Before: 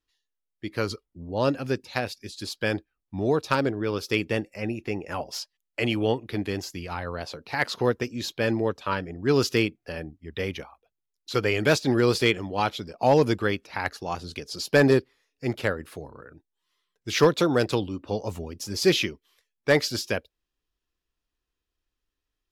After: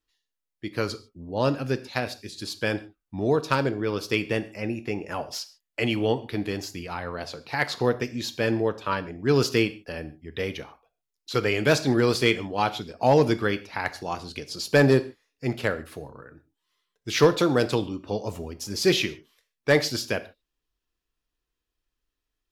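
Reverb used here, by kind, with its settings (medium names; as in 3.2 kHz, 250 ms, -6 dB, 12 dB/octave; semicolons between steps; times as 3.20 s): gated-style reverb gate 170 ms falling, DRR 11 dB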